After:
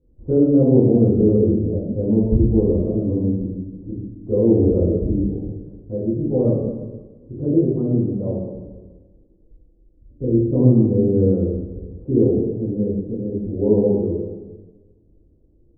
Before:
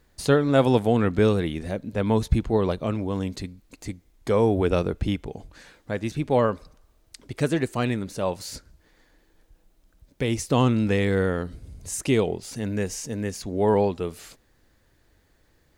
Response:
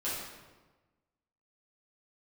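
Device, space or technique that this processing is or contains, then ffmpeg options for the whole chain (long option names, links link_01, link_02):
next room: -filter_complex "[0:a]lowpass=frequency=440:width=0.5412,lowpass=frequency=440:width=1.3066[link_01];[1:a]atrim=start_sample=2205[link_02];[link_01][link_02]afir=irnorm=-1:irlink=0,volume=2dB"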